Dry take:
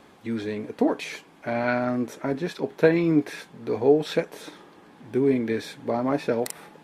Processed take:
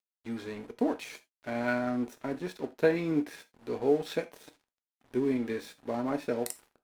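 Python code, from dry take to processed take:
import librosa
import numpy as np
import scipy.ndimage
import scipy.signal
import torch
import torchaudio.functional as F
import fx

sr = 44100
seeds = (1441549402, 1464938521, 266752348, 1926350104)

y = fx.high_shelf(x, sr, hz=6500.0, db=6.5)
y = np.sign(y) * np.maximum(np.abs(y) - 10.0 ** (-41.0 / 20.0), 0.0)
y = fx.rev_gated(y, sr, seeds[0], gate_ms=110, shape='falling', drr_db=9.0)
y = y * librosa.db_to_amplitude(-7.0)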